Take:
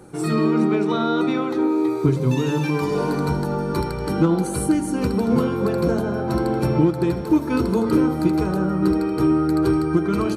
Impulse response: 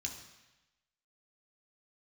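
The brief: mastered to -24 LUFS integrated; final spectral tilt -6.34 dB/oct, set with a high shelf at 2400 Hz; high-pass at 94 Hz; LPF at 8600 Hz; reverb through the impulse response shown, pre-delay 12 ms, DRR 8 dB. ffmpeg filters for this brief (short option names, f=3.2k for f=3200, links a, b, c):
-filter_complex "[0:a]highpass=94,lowpass=8.6k,highshelf=f=2.4k:g=7,asplit=2[a][b];[1:a]atrim=start_sample=2205,adelay=12[c];[b][c]afir=irnorm=-1:irlink=0,volume=-7dB[d];[a][d]amix=inputs=2:normalize=0,volume=-5dB"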